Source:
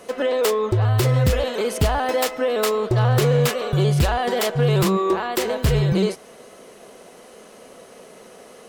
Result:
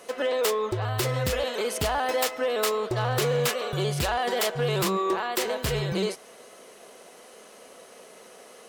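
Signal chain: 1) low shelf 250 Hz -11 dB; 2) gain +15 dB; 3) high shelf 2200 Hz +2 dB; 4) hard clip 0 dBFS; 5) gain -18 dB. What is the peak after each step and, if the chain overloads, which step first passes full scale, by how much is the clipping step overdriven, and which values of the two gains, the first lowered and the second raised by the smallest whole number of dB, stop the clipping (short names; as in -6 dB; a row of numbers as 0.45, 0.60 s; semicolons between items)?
-9.5, +5.5, +7.0, 0.0, -18.0 dBFS; step 2, 7.0 dB; step 2 +8 dB, step 5 -11 dB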